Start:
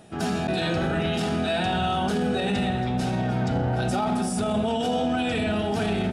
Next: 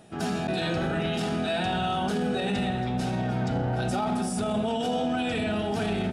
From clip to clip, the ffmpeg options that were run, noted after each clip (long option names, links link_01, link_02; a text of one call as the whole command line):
ffmpeg -i in.wav -af "equalizer=frequency=79:width=6.6:gain=-7.5,volume=-2.5dB" out.wav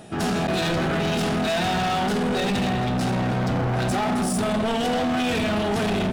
ffmpeg -i in.wav -af "asoftclip=type=hard:threshold=-30dB,volume=9dB" out.wav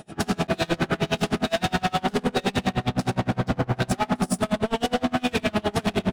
ffmpeg -i in.wav -af "aeval=exprs='val(0)*pow(10,-31*(0.5-0.5*cos(2*PI*9.7*n/s))/20)':channel_layout=same,volume=4.5dB" out.wav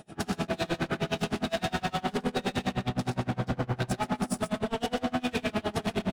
ffmpeg -i in.wav -af "aecho=1:1:121:0.335,volume=-6.5dB" out.wav